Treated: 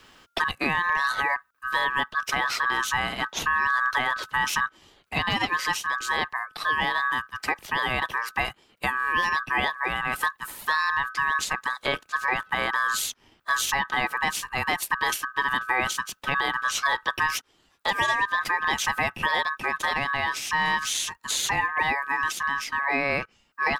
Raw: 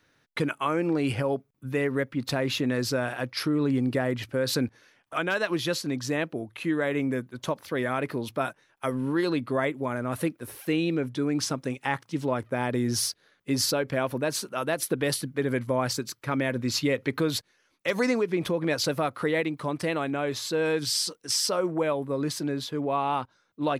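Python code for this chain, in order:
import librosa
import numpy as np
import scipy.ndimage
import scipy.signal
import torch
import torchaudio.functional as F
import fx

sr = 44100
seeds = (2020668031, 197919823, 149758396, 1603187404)

y = x * np.sin(2.0 * np.pi * 1400.0 * np.arange(len(x)) / sr)
y = fx.quant_float(y, sr, bits=8)
y = fx.band_squash(y, sr, depth_pct=40)
y = F.gain(torch.from_numpy(y), 4.0).numpy()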